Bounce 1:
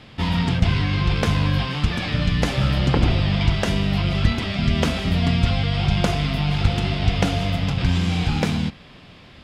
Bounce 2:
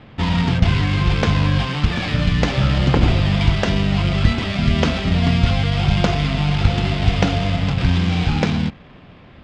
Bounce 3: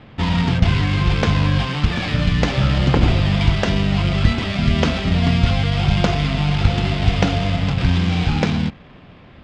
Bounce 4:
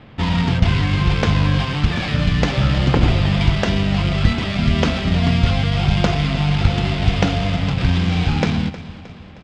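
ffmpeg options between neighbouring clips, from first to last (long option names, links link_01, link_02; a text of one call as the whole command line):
ffmpeg -i in.wav -af "adynamicsmooth=sensitivity=7:basefreq=1900,lowpass=frequency=6900:width=0.5412,lowpass=frequency=6900:width=1.3066,volume=3dB" out.wav
ffmpeg -i in.wav -af anull out.wav
ffmpeg -i in.wav -af "aecho=1:1:312|624|936|1248|1560:0.158|0.0808|0.0412|0.021|0.0107" out.wav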